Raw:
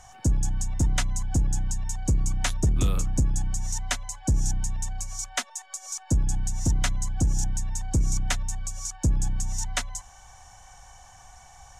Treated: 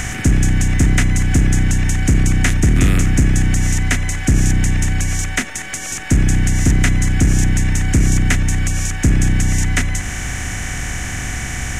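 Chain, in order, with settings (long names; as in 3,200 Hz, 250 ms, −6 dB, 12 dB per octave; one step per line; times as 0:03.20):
compressor on every frequency bin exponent 0.4
graphic EQ with 10 bands 250 Hz +5 dB, 500 Hz −3 dB, 1,000 Hz −8 dB, 2,000 Hz +9 dB, 4,000 Hz −9 dB
one half of a high-frequency compander encoder only
level +6 dB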